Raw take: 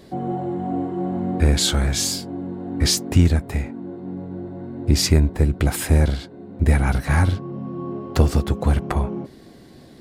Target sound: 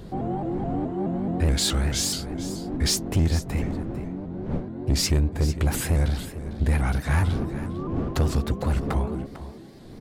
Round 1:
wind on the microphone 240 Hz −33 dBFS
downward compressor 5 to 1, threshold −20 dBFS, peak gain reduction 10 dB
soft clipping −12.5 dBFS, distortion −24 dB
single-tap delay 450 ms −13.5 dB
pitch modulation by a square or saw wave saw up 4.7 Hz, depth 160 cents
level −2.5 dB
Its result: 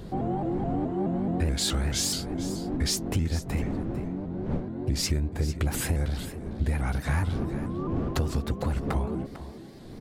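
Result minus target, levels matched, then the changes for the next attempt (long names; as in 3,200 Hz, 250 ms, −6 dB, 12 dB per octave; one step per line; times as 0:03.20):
downward compressor: peak gain reduction +10 dB
remove: downward compressor 5 to 1, threshold −20 dBFS, peak gain reduction 10 dB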